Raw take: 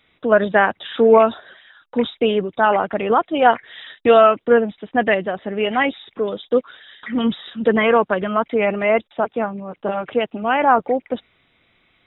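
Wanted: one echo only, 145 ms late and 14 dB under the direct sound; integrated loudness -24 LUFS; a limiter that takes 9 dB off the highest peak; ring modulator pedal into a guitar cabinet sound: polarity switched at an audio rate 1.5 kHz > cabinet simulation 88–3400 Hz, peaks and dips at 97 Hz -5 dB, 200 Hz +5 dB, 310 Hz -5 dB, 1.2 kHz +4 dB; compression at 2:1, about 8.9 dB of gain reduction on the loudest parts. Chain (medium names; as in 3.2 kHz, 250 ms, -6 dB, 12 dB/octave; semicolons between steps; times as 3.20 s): compression 2:1, threshold -24 dBFS; peak limiter -18 dBFS; delay 145 ms -14 dB; polarity switched at an audio rate 1.5 kHz; cabinet simulation 88–3400 Hz, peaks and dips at 97 Hz -5 dB, 200 Hz +5 dB, 310 Hz -5 dB, 1.2 kHz +4 dB; trim +3 dB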